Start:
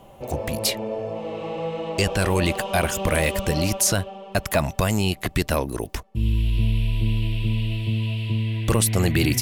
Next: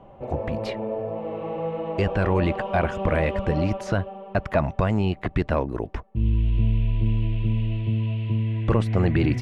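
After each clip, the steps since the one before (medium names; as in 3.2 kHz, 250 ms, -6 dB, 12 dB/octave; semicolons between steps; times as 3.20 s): low-pass 1.7 kHz 12 dB/octave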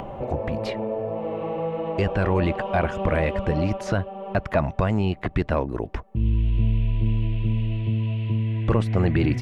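upward compressor, threshold -23 dBFS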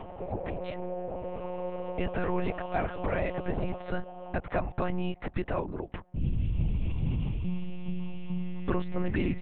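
monotone LPC vocoder at 8 kHz 180 Hz; trim -7.5 dB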